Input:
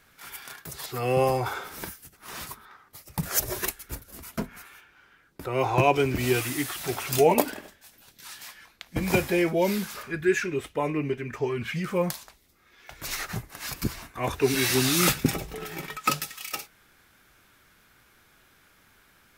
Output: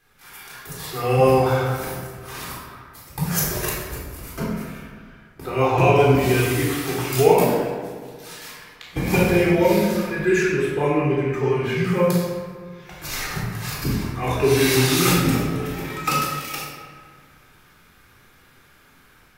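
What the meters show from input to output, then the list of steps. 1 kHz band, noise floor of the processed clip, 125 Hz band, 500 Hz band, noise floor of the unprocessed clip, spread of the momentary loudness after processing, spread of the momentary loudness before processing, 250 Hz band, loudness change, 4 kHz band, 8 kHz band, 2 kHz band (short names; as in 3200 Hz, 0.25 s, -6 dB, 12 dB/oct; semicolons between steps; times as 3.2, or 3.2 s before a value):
+5.5 dB, -53 dBFS, +9.5 dB, +7.0 dB, -61 dBFS, 20 LU, 18 LU, +7.0 dB, +6.5 dB, +4.0 dB, +2.5 dB, +5.0 dB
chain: AGC gain up to 5.5 dB; band-limited delay 61 ms, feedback 83%, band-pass 920 Hz, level -14 dB; shoebox room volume 950 m³, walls mixed, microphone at 3.8 m; gain -7.5 dB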